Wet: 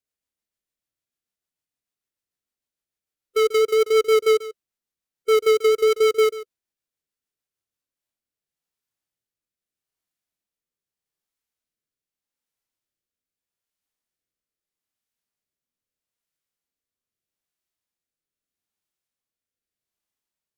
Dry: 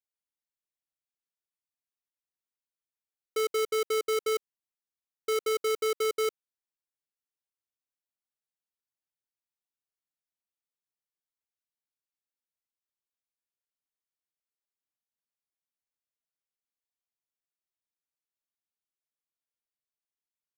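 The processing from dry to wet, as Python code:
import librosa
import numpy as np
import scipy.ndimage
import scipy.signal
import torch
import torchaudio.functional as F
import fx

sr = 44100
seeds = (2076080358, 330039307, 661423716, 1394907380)

y = fx.low_shelf(x, sr, hz=390.0, db=3.5)
y = y + 10.0 ** (-16.0 / 20.0) * np.pad(y, (int(140 * sr / 1000.0), 0))[:len(y)]
y = fx.rotary_switch(y, sr, hz=6.7, then_hz=0.8, switch_at_s=7.41)
y = fx.hpss(y, sr, part='harmonic', gain_db=9)
y = y * 10.0 ** (2.0 / 20.0)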